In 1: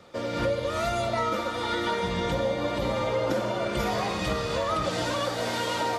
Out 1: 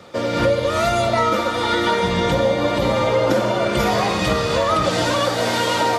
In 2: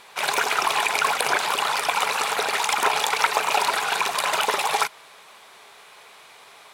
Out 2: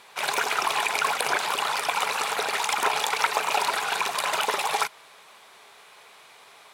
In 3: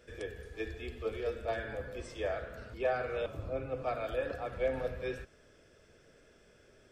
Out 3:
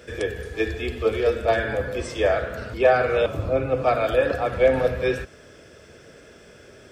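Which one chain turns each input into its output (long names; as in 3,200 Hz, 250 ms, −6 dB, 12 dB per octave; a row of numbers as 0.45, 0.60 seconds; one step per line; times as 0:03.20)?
high-pass filter 57 Hz
normalise the peak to −6 dBFS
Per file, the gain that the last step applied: +9.0, −3.0, +14.5 decibels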